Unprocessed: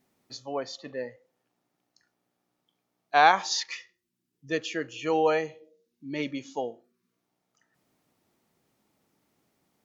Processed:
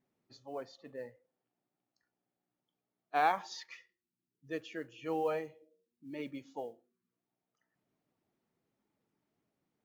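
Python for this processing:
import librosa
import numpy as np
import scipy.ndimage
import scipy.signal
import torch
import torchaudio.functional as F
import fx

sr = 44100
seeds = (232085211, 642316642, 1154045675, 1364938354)

y = fx.spec_quant(x, sr, step_db=15)
y = fx.high_shelf(y, sr, hz=3500.0, db=-12.0)
y = fx.mod_noise(y, sr, seeds[0], snr_db=34)
y = y * librosa.db_to_amplitude(-9.0)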